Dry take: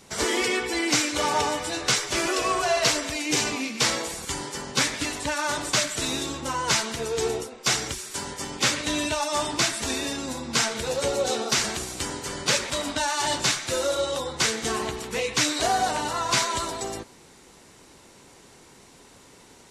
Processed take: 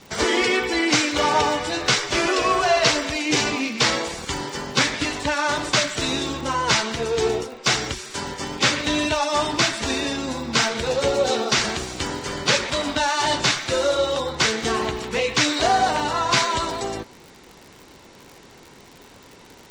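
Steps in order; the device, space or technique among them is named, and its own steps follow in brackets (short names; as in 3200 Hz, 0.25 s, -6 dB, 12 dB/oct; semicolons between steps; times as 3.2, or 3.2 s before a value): lo-fi chain (LPF 5300 Hz 12 dB/oct; wow and flutter 19 cents; crackle 76/s -38 dBFS); gain +5 dB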